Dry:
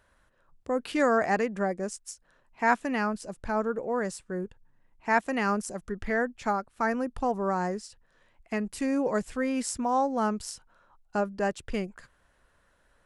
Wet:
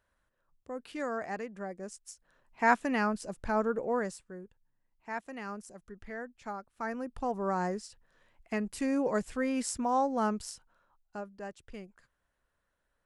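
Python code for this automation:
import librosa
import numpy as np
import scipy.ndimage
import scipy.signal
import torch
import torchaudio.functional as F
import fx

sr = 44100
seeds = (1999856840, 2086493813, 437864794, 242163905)

y = fx.gain(x, sr, db=fx.line((1.63, -11.5), (2.64, -1.0), (3.94, -1.0), (4.42, -13.5), (6.32, -13.5), (7.6, -2.5), (10.35, -2.5), (11.3, -14.0)))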